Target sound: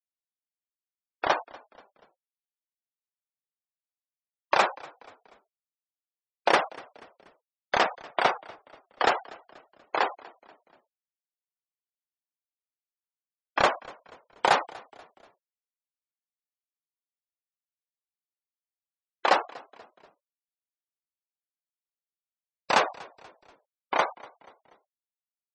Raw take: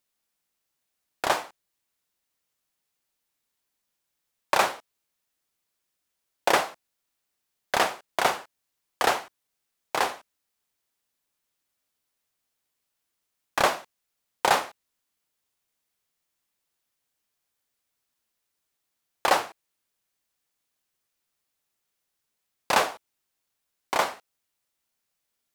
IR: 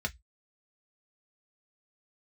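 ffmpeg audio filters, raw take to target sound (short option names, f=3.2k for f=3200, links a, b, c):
-filter_complex "[0:a]afftfilt=real='re*gte(hypot(re,im),0.0447)':imag='im*gte(hypot(re,im),0.0447)':win_size=1024:overlap=0.75,asplit=4[a][b][c][d];[b]adelay=241,afreqshift=-50,volume=-22.5dB[e];[c]adelay=482,afreqshift=-100,volume=-29.1dB[f];[d]adelay=723,afreqshift=-150,volume=-35.6dB[g];[a][e][f][g]amix=inputs=4:normalize=0"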